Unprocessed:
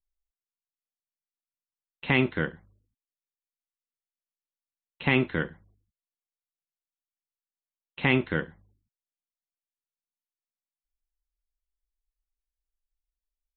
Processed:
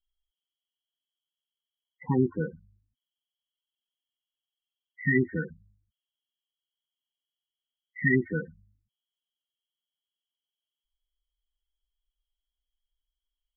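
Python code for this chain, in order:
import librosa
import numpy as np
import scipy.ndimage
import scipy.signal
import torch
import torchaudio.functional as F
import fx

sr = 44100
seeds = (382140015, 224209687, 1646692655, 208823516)

y = fx.freq_compress(x, sr, knee_hz=1800.0, ratio=4.0)
y = fx.high_shelf_res(y, sr, hz=1600.0, db=-11.0, q=3.0, at=(2.04, 2.53))
y = fx.spec_topn(y, sr, count=8)
y = F.gain(torch.from_numpy(y), 1.0).numpy()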